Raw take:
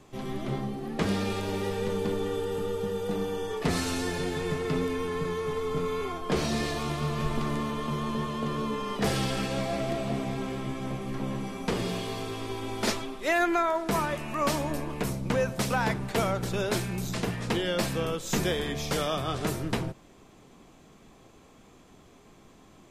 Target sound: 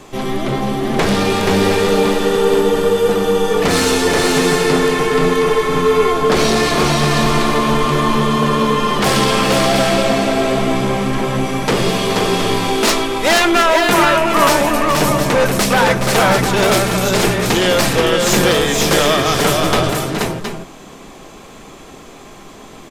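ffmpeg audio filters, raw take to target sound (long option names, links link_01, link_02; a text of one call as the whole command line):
ffmpeg -i in.wav -af "aeval=exprs='0.251*sin(PI/2*3.16*val(0)/0.251)':channel_layout=same,equalizer=frequency=80:width=0.4:gain=-7.5,aecho=1:1:418|479|714|719:0.299|0.668|0.251|0.316,volume=3.5dB" out.wav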